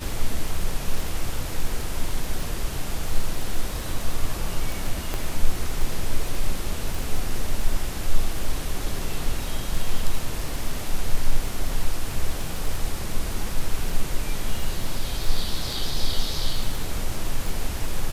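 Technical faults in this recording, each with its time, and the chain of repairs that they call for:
crackle 23/s -25 dBFS
5.14 pop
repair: de-click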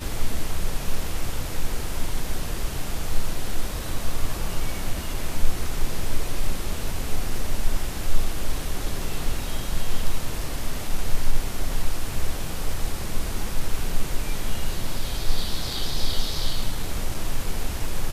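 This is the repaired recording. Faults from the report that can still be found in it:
none

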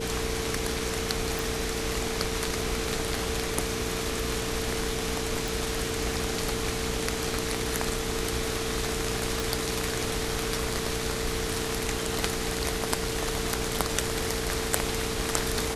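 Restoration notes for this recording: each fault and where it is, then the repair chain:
hum 60 Hz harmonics 7 -36 dBFS
tone 450 Hz -34 dBFS
1.39 pop
5.48 pop
9.4 pop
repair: de-click; de-hum 60 Hz, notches 7; notch 450 Hz, Q 30

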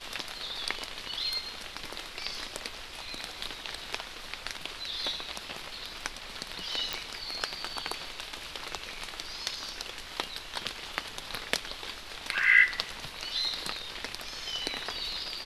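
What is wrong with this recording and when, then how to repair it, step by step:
6.93 pop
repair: de-click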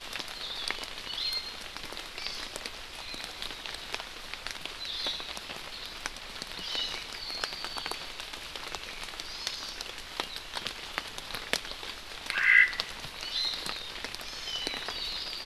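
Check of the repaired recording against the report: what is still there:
none

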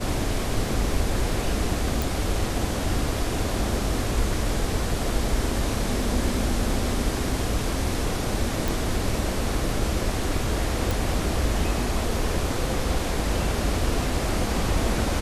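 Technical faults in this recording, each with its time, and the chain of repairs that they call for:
2.02 pop
8.68 pop
10.91 pop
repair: de-click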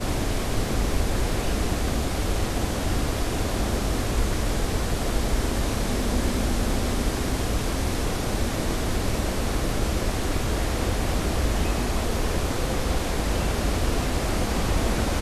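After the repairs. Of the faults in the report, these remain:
none

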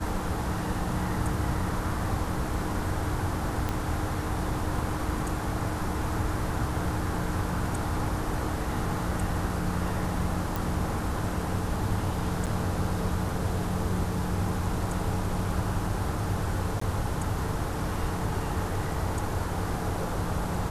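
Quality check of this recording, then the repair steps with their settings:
3.69 pop -15 dBFS
10.56 pop
12.46–12.47 gap 7.5 ms
16.8–16.81 gap 14 ms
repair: de-click; interpolate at 12.46, 7.5 ms; interpolate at 16.8, 14 ms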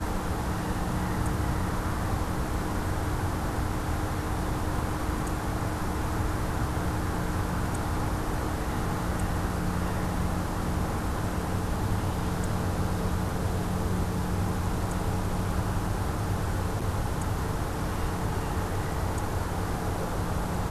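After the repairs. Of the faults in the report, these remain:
3.69 pop

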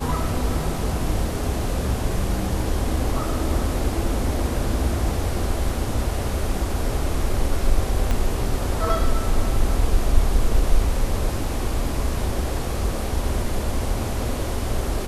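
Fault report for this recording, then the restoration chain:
8.11 pop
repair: de-click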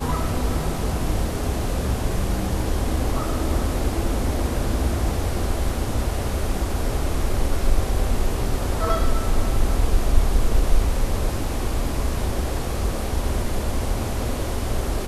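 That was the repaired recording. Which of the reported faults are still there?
8.11 pop

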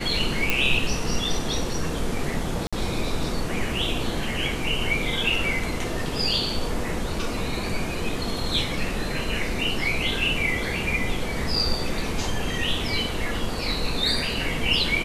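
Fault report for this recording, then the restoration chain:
0.5 pop
2.67–2.73 gap 56 ms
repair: de-click; interpolate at 2.67, 56 ms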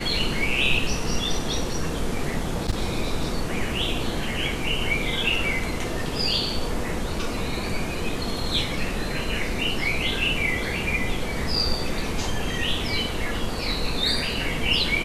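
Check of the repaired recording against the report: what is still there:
none

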